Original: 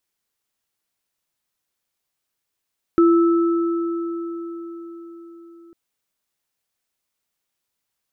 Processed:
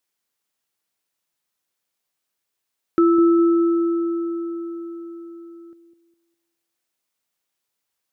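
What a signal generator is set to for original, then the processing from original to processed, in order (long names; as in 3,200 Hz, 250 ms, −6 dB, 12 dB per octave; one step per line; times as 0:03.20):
inharmonic partials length 2.75 s, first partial 338 Hz, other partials 1,310 Hz, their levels −11.5 dB, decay 4.89 s, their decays 4.18 s, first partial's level −10 dB
low-shelf EQ 100 Hz −11.5 dB
delay with a low-pass on its return 204 ms, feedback 32%, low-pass 560 Hz, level −8.5 dB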